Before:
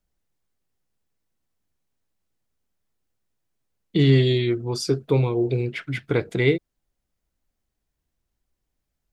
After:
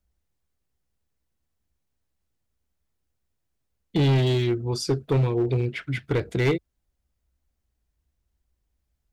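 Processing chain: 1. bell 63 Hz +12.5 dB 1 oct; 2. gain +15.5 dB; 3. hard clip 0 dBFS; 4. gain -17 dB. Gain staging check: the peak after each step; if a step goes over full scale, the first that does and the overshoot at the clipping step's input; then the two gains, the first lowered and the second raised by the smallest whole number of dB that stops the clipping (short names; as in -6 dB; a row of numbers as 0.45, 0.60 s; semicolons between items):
-6.0, +9.5, 0.0, -17.0 dBFS; step 2, 9.5 dB; step 2 +5.5 dB, step 4 -7 dB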